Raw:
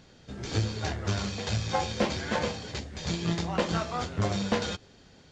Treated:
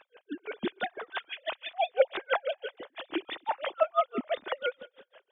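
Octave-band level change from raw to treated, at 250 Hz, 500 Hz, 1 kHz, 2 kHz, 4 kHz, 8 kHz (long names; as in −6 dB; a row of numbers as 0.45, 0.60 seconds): −8.0 dB, +3.0 dB, +1.0 dB, 0.0 dB, −5.0 dB, below −40 dB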